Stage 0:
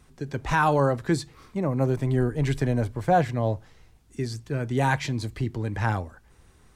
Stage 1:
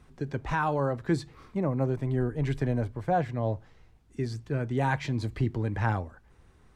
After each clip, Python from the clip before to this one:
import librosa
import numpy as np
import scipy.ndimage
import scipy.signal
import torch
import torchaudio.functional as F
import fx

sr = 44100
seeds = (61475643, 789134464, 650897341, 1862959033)

y = fx.high_shelf(x, sr, hz=4400.0, db=-11.0)
y = fx.rider(y, sr, range_db=4, speed_s=0.5)
y = F.gain(torch.from_numpy(y), -3.0).numpy()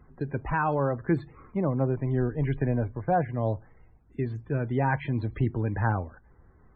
y = scipy.signal.medfilt(x, 9)
y = fx.spec_topn(y, sr, count=64)
y = F.gain(torch.from_numpy(y), 1.5).numpy()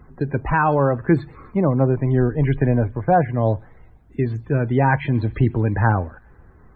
y = fx.echo_wet_highpass(x, sr, ms=125, feedback_pct=69, hz=2600.0, wet_db=-21.5)
y = F.gain(torch.from_numpy(y), 8.5).numpy()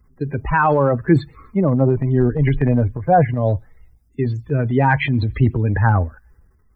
y = fx.bin_expand(x, sr, power=1.5)
y = fx.transient(y, sr, attack_db=-1, sustain_db=8)
y = F.gain(torch.from_numpy(y), 4.0).numpy()